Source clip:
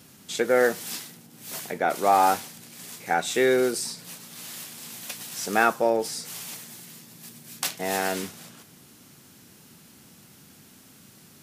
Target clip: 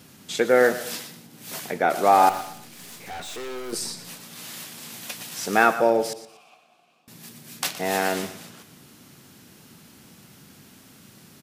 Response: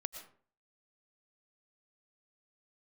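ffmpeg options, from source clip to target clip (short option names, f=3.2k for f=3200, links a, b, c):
-filter_complex "[0:a]asettb=1/sr,asplit=3[a][b][c];[a]atrim=end=2.294[d];[b]atrim=start=2.29:end=3.73,asetpts=PTS-STARTPTS,afade=t=in:d=0.004:c=qsin,afade=t=out:st=1.436:d=0.004:c=qsin,aeval=exprs='(tanh(63.1*val(0)+0.3)-tanh(0.3))/63.1':c=same[e];[c]atrim=start=3.726[f];[d][e]acrossfade=d=0.004:c1=hsin:c2=qsin[g];[g][f]acrossfade=d=0.004:c1=qsin:c2=hsin,asettb=1/sr,asplit=3[h][i][j];[h]atrim=end=6.134[k];[i]atrim=start=6.13:end=7.08,asetpts=PTS-STARTPTS,afade=t=in:d=0.004:c=qsin,afade=t=out:st=0.946:d=0.004:c=qsin,asplit=3[l][m][n];[l]bandpass=f=730:t=q:w=8,volume=0dB[o];[m]bandpass=f=1.09k:t=q:w=8,volume=-6dB[p];[n]bandpass=f=2.44k:t=q:w=8,volume=-9dB[q];[o][p][q]amix=inputs=3:normalize=0[r];[j]atrim=start=7.076[s];[k][r]acrossfade=d=0.004:c1=hsin:c2=qsin[t];[t][s]acrossfade=d=0.004:c1=qsin:c2=hsin,aecho=1:1:119|238|357:0.178|0.0587|0.0194,asplit=2[u][v];[1:a]atrim=start_sample=2205,lowpass=6.1k[w];[v][w]afir=irnorm=-1:irlink=0,volume=-6dB[x];[u][x]amix=inputs=2:normalize=0"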